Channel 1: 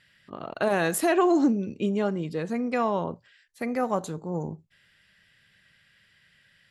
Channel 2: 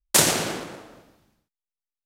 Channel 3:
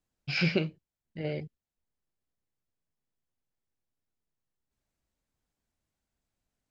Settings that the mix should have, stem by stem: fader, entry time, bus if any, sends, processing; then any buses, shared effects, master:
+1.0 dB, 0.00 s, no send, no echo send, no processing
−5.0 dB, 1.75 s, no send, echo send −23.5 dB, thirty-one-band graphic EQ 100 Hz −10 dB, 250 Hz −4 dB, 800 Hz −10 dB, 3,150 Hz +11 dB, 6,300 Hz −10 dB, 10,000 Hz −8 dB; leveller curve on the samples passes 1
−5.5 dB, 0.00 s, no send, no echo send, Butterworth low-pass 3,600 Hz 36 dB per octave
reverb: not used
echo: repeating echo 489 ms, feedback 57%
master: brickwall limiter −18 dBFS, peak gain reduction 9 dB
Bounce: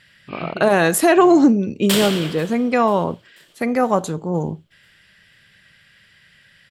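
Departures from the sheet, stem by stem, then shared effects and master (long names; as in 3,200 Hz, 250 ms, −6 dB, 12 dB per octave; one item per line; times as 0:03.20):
stem 1 +1.0 dB → +9.0 dB
master: missing brickwall limiter −18 dBFS, peak gain reduction 9 dB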